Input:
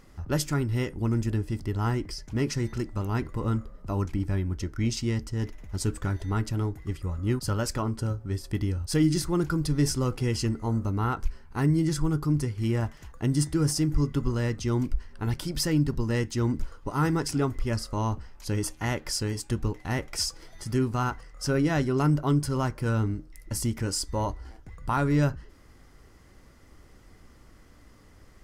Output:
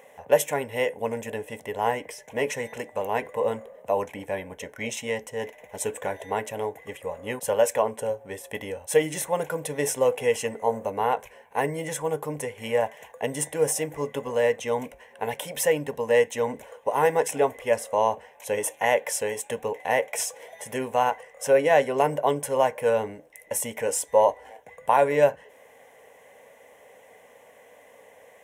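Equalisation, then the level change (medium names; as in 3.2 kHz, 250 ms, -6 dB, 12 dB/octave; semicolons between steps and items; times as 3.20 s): resonant high-pass 470 Hz, resonance Q 3.9; static phaser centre 1.3 kHz, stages 6; +8.5 dB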